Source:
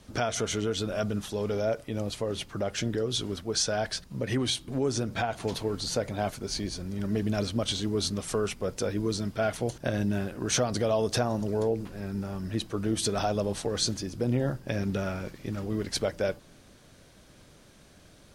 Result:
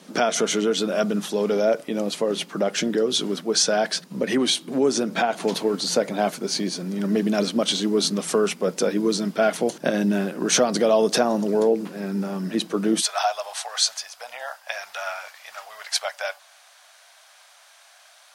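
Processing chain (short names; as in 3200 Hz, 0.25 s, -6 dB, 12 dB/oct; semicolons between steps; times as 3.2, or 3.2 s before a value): elliptic high-pass 170 Hz, stop band 50 dB, from 13 s 690 Hz; gain +8.5 dB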